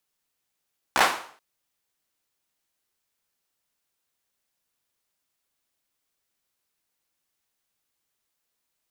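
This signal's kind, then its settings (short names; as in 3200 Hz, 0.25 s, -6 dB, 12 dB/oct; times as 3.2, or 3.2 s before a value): hand clap length 0.43 s, apart 15 ms, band 960 Hz, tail 0.49 s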